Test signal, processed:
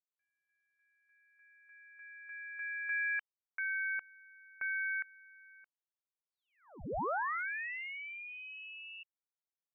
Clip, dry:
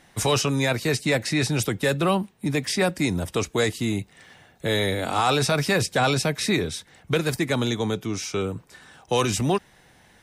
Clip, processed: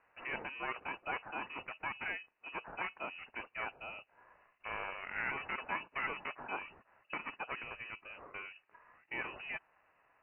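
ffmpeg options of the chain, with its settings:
-af "aeval=exprs='val(0)*sin(2*PI*340*n/s)':c=same,aderivative,lowpass=f=2600:t=q:w=0.5098,lowpass=f=2600:t=q:w=0.6013,lowpass=f=2600:t=q:w=0.9,lowpass=f=2600:t=q:w=2.563,afreqshift=-3100,volume=1.5"

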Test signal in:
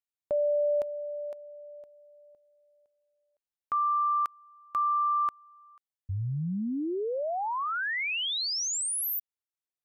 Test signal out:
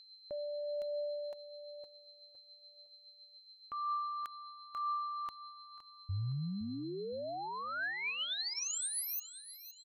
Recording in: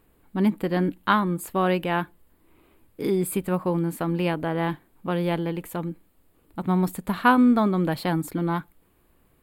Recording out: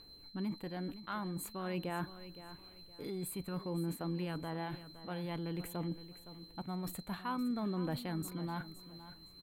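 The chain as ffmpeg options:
-af "bandreject=f=5100:w=11,areverse,acompressor=threshold=0.0224:ratio=4:attack=0.53:release=122:knee=1:detection=rms,areverse,aeval=exprs='val(0)+0.00282*sin(2*PI*4100*n/s)':c=same,aphaser=in_gain=1:out_gain=1:delay=1.7:decay=0.33:speed=0.51:type=triangular,aecho=1:1:515|1030|1545:0.2|0.0579|0.0168,volume=0.631"

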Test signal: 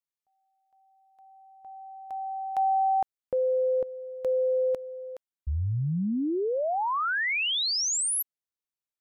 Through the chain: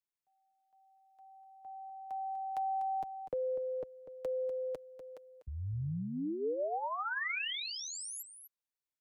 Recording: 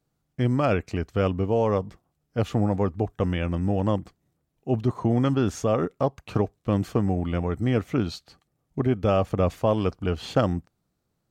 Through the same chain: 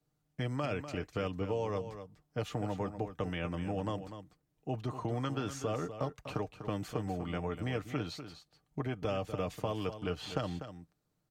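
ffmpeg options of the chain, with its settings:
-filter_complex "[0:a]aecho=1:1:6.6:0.41,acrossover=split=82|500|2300[s0][s1][s2][s3];[s0]acompressor=threshold=0.00631:ratio=4[s4];[s1]acompressor=threshold=0.0224:ratio=4[s5];[s2]acompressor=threshold=0.0224:ratio=4[s6];[s3]acompressor=threshold=0.0112:ratio=4[s7];[s4][s5][s6][s7]amix=inputs=4:normalize=0,asplit=2[s8][s9];[s9]aecho=0:1:246:0.299[s10];[s8][s10]amix=inputs=2:normalize=0,volume=0.562"

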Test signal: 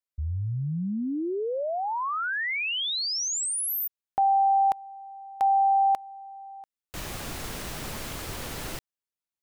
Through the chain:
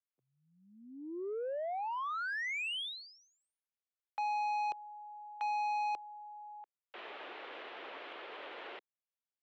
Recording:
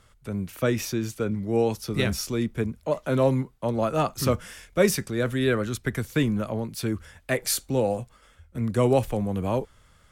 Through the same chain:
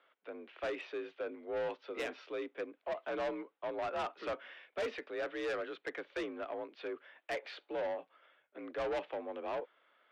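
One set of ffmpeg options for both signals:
-af "highpass=f=320:t=q:w=0.5412,highpass=f=320:t=q:w=1.307,lowpass=f=3300:t=q:w=0.5176,lowpass=f=3300:t=q:w=0.7071,lowpass=f=3300:t=q:w=1.932,afreqshift=53,asoftclip=type=tanh:threshold=0.0501,volume=0.473"

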